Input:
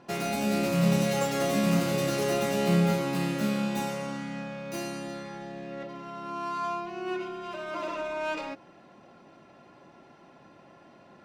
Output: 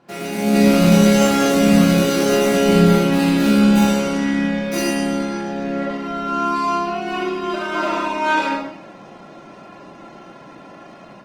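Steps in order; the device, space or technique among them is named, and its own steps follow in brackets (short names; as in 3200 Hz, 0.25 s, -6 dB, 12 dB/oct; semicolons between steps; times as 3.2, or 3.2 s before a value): far-field microphone of a smart speaker (reverb RT60 0.80 s, pre-delay 24 ms, DRR -2.5 dB; HPF 140 Hz 6 dB/oct; AGC gain up to 9.5 dB; Opus 20 kbps 48000 Hz)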